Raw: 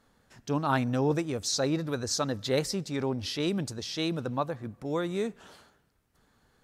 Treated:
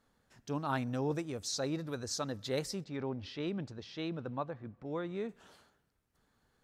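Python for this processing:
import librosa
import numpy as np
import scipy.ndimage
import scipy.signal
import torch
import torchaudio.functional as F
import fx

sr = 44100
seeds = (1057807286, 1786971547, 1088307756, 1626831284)

y = fx.lowpass(x, sr, hz=3100.0, slope=12, at=(2.84, 5.29))
y = F.gain(torch.from_numpy(y), -7.5).numpy()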